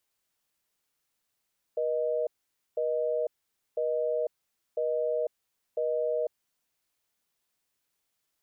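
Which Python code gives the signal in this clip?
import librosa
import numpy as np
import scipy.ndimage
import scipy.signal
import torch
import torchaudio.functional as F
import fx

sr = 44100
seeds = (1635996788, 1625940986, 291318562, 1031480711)

y = fx.call_progress(sr, length_s=4.51, kind='busy tone', level_db=-28.5)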